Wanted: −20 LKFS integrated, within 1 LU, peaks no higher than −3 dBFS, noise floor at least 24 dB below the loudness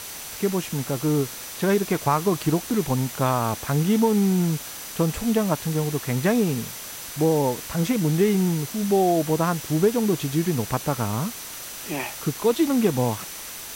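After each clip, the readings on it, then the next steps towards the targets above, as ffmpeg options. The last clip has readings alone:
interfering tone 6,000 Hz; level of the tone −45 dBFS; background noise floor −37 dBFS; target noise floor −48 dBFS; integrated loudness −23.5 LKFS; sample peak −8.5 dBFS; target loudness −20.0 LKFS
→ -af "bandreject=frequency=6000:width=30"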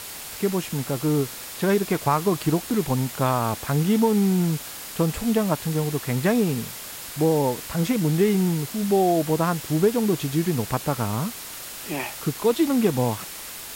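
interfering tone none found; background noise floor −37 dBFS; target noise floor −48 dBFS
→ -af "afftdn=noise_reduction=11:noise_floor=-37"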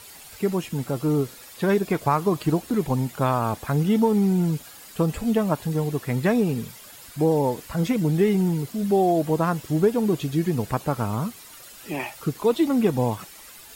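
background noise floor −45 dBFS; target noise floor −48 dBFS
→ -af "afftdn=noise_reduction=6:noise_floor=-45"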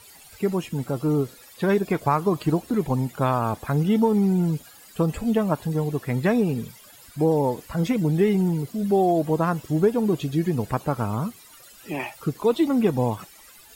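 background noise floor −49 dBFS; integrated loudness −24.0 LKFS; sample peak −9.0 dBFS; target loudness −20.0 LKFS
→ -af "volume=4dB"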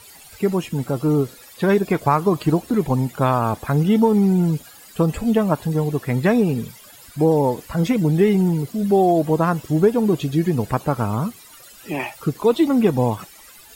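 integrated loudness −20.0 LKFS; sample peak −5.0 dBFS; background noise floor −45 dBFS

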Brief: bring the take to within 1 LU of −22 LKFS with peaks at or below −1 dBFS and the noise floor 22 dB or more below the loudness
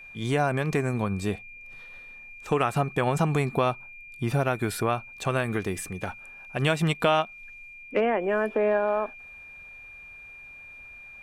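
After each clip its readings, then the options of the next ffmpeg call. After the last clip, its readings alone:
interfering tone 2,400 Hz; level of the tone −43 dBFS; integrated loudness −27.0 LKFS; sample peak −10.0 dBFS; target loudness −22.0 LKFS
→ -af "bandreject=frequency=2400:width=30"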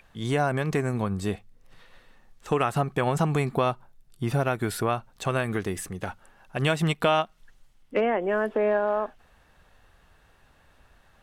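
interfering tone none found; integrated loudness −27.0 LKFS; sample peak −10.5 dBFS; target loudness −22.0 LKFS
→ -af "volume=5dB"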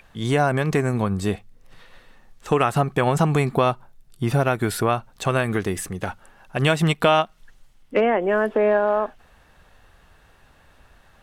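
integrated loudness −22.0 LKFS; sample peak −5.5 dBFS; background noise floor −55 dBFS

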